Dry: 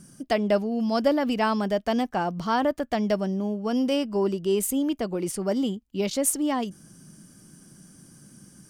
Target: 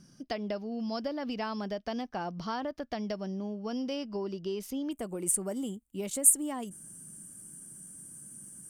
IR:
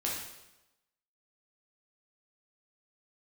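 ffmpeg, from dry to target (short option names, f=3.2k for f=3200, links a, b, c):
-af "acompressor=threshold=-24dB:ratio=6,asetnsamples=n=441:p=0,asendcmd='4.91 highshelf g 10',highshelf=f=6.6k:t=q:w=3:g=-7,volume=-7dB"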